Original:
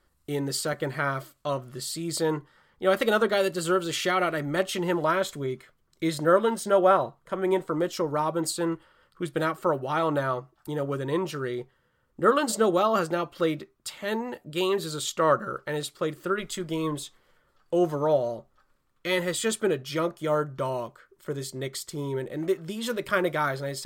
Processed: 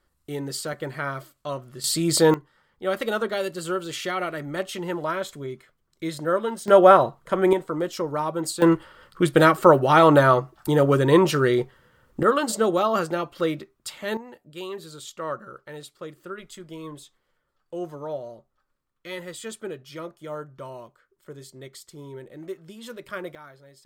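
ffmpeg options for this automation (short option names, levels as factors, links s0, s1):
-af "asetnsamples=n=441:p=0,asendcmd='1.84 volume volume 9dB;2.34 volume volume -3dB;6.68 volume volume 7dB;7.53 volume volume 0dB;8.62 volume volume 11dB;12.23 volume volume 1dB;14.17 volume volume -9dB;23.35 volume volume -19.5dB',volume=0.794"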